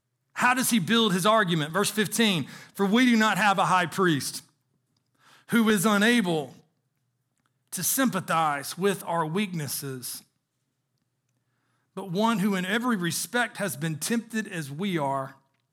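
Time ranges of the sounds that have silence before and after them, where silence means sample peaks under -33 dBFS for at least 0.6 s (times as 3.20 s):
5.50–6.46 s
7.73–10.18 s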